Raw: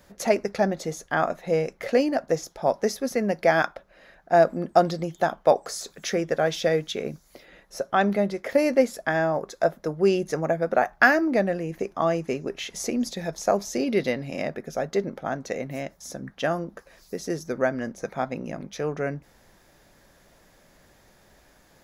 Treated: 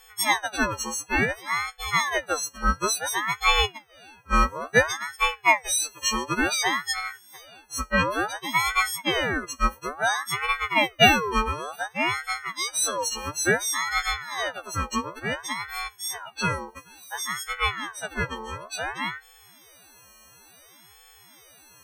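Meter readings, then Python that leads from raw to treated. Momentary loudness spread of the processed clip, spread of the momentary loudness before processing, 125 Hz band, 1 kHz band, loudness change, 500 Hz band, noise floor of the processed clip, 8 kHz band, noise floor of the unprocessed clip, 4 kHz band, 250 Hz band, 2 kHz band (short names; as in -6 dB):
11 LU, 11 LU, -2.0 dB, +2.0 dB, +0.5 dB, -8.5 dB, -54 dBFS, +9.5 dB, -59 dBFS, +10.5 dB, -5.5 dB, +5.0 dB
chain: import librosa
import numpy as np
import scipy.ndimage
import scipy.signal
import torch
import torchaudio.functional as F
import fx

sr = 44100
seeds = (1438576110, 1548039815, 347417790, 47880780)

y = fx.freq_snap(x, sr, grid_st=6)
y = fx.ring_lfo(y, sr, carrier_hz=1200.0, swing_pct=45, hz=0.57)
y = y * 10.0 ** (-1.0 / 20.0)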